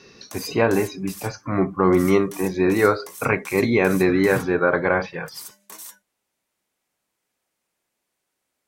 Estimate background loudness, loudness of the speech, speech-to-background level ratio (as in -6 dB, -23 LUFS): -39.5 LUFS, -20.5 LUFS, 19.0 dB